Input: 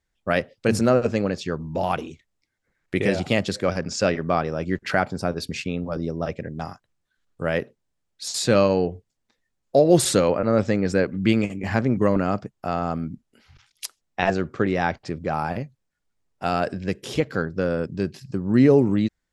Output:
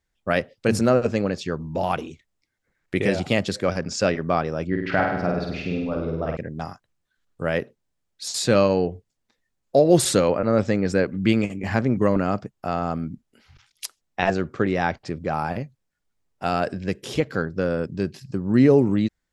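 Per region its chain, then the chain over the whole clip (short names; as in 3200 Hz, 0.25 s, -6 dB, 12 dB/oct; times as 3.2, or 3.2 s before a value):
4.67–6.37 air absorption 260 m + flutter echo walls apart 8.6 m, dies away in 0.91 s
whole clip: dry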